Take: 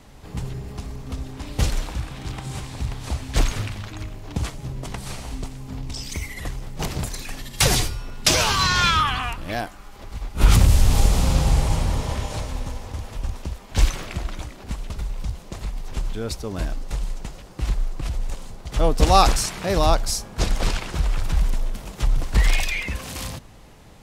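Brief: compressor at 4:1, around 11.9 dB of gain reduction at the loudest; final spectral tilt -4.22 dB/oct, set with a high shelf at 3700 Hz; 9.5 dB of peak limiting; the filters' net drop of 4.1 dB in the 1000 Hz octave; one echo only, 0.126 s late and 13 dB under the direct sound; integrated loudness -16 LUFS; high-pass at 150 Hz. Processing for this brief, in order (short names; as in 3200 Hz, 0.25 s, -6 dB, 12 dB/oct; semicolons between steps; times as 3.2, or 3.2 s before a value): HPF 150 Hz; bell 1000 Hz -5 dB; high shelf 3700 Hz -7.5 dB; compressor 4:1, threshold -29 dBFS; limiter -24.5 dBFS; echo 0.126 s -13 dB; gain +21 dB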